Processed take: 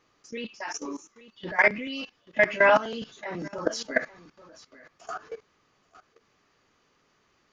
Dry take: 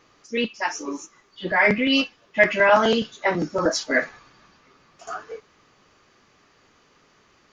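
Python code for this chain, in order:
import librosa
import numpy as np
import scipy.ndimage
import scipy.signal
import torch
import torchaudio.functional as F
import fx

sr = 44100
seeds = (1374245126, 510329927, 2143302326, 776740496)

y = x + 10.0 ** (-20.0 / 20.0) * np.pad(x, (int(835 * sr / 1000.0), 0))[:len(x)]
y = fx.level_steps(y, sr, step_db=17)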